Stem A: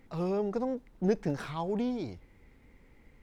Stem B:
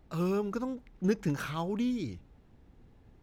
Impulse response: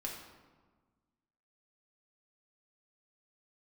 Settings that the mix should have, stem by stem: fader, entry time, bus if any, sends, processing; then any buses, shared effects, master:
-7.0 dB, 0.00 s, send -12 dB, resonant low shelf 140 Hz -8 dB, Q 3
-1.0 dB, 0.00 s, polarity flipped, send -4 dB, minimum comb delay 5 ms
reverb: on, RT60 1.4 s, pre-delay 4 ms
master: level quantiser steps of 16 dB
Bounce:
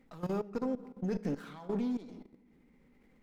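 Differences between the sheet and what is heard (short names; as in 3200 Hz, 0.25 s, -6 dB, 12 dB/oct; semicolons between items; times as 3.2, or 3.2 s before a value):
stem A: send -12 dB -> -2 dB; stem B -1.0 dB -> -10.0 dB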